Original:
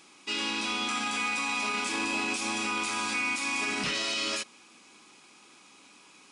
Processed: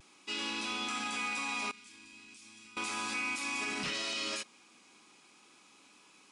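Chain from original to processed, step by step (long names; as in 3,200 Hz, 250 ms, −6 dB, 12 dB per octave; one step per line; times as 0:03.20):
pitch vibrato 0.38 Hz 18 cents
0:01.71–0:02.77: guitar amp tone stack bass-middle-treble 6-0-2
level −5.5 dB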